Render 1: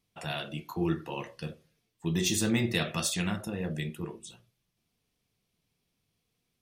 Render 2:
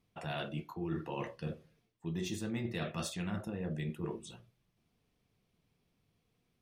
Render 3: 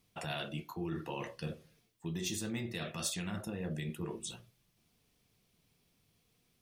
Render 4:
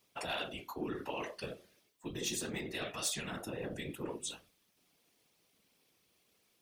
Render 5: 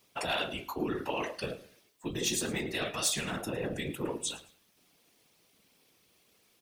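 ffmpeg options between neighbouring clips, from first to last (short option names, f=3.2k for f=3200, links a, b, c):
-af "highshelf=f=3k:g=-11.5,areverse,acompressor=threshold=-39dB:ratio=6,areverse,volume=4dB"
-af "alimiter=level_in=7dB:limit=-24dB:level=0:latency=1:release=260,volume=-7dB,highshelf=f=3.3k:g=11,volume=1.5dB"
-af "highpass=280,afftfilt=real='hypot(re,im)*cos(2*PI*random(0))':imag='hypot(re,im)*sin(2*PI*random(1))':win_size=512:overlap=0.75,aeval=exprs='0.0398*sin(PI/2*1.41*val(0)/0.0398)':c=same,volume=1.5dB"
-af "aecho=1:1:109|218:0.119|0.0333,volume=6dB"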